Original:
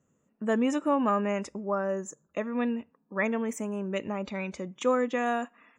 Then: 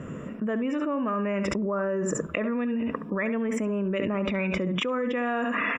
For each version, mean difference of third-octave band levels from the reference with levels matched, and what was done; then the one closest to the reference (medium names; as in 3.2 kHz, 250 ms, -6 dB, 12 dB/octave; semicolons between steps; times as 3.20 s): 6.0 dB: Savitzky-Golay filter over 25 samples; peaking EQ 820 Hz -10 dB 0.31 oct; on a send: delay 70 ms -12.5 dB; on the sum: level flattener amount 100%; trim -5 dB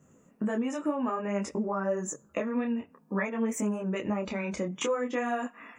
3.5 dB: in parallel at -1.5 dB: peak limiter -26 dBFS, peak gain reduction 11.5 dB; on the sum: peaking EQ 3.8 kHz -5 dB 0.62 oct; compression 6:1, threshold -33 dBFS, peak gain reduction 14 dB; detune thickener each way 19 cents; trim +9 dB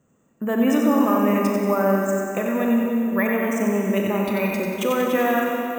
11.0 dB: peak limiter -21.5 dBFS, peak gain reduction 7 dB; on a send: two-band feedback delay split 710 Hz, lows 230 ms, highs 92 ms, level -5.5 dB; on the sum: Schroeder reverb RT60 2.8 s, combs from 27 ms, DRR 1.5 dB; careless resampling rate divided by 3×, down filtered, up hold; trim +7.5 dB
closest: second